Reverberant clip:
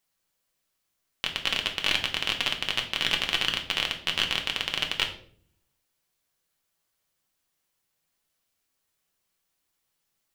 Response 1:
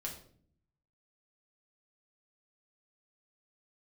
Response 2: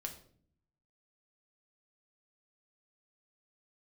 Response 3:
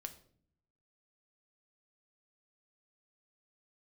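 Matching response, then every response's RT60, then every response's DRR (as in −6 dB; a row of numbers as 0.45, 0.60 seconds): 2; 0.55, 0.55, 0.60 seconds; −2.0, 2.5, 7.0 decibels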